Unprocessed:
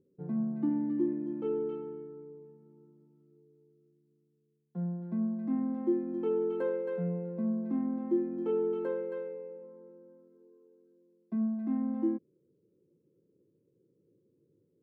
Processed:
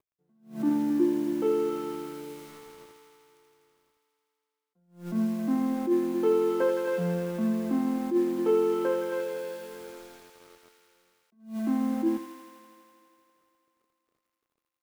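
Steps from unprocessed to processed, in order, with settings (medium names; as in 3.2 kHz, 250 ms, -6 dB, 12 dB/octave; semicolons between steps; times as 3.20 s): high-pass 360 Hz 6 dB/octave; in parallel at +2 dB: compression 5:1, threshold -43 dBFS, peak gain reduction 14 dB; on the sum: bit crusher 10-bit; crossover distortion -55 dBFS; feedback echo behind a high-pass 82 ms, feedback 83%, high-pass 1.4 kHz, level -4 dB; on a send at -19 dB: reverberation RT60 1.1 s, pre-delay 9 ms; on the sum: attacks held to a fixed rise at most 160 dB/s; trim +7 dB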